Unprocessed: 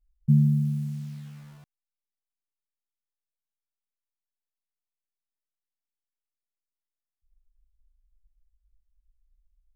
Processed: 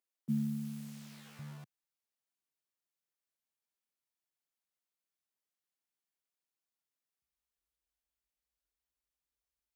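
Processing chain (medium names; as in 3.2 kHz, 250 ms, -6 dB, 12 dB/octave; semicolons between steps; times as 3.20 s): high-pass 270 Hz 24 dB/octave, from 1.39 s 120 Hz; trim +1.5 dB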